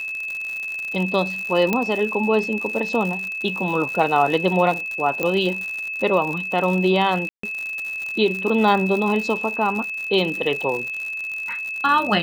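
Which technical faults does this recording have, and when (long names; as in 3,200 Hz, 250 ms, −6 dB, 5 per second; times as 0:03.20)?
surface crackle 99 per second −26 dBFS
whistle 2,600 Hz −26 dBFS
0:01.73: click −7 dBFS
0:05.23: click −9 dBFS
0:07.29–0:07.43: drop-out 144 ms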